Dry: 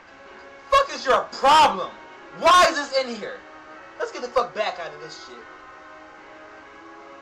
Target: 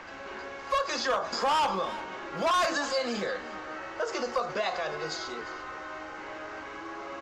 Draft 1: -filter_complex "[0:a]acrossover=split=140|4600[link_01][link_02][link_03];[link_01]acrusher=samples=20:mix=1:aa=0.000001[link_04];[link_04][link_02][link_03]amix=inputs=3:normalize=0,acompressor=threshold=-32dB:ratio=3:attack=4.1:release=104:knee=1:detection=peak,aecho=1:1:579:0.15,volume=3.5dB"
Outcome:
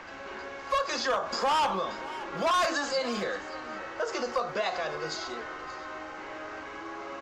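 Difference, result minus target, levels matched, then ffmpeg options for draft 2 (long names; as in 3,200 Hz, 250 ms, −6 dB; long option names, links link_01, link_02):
echo 227 ms late
-filter_complex "[0:a]acrossover=split=140|4600[link_01][link_02][link_03];[link_01]acrusher=samples=20:mix=1:aa=0.000001[link_04];[link_04][link_02][link_03]amix=inputs=3:normalize=0,acompressor=threshold=-32dB:ratio=3:attack=4.1:release=104:knee=1:detection=peak,aecho=1:1:352:0.15,volume=3.5dB"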